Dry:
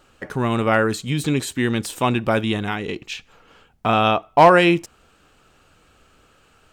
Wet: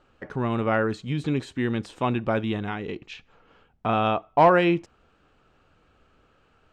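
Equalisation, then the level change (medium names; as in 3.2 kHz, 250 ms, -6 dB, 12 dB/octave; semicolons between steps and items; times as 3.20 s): low-pass 5.5 kHz 12 dB/octave; treble shelf 2.5 kHz -8.5 dB; -4.5 dB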